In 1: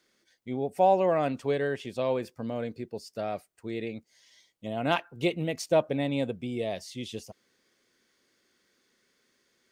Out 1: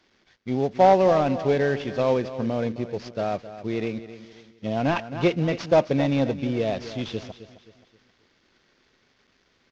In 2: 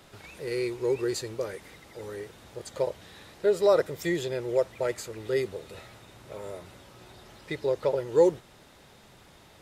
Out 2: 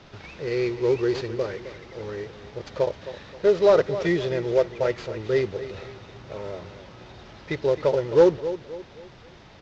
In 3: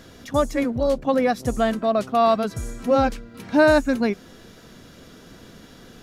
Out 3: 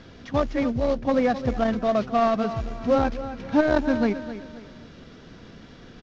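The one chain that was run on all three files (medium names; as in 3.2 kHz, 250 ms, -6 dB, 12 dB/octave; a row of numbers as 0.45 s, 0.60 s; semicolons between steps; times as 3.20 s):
CVSD coder 32 kbps; tone controls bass +3 dB, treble -6 dB; feedback delay 264 ms, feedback 38%, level -13.5 dB; transformer saturation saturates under 310 Hz; normalise loudness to -24 LUFS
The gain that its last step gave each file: +6.5 dB, +5.0 dB, -1.5 dB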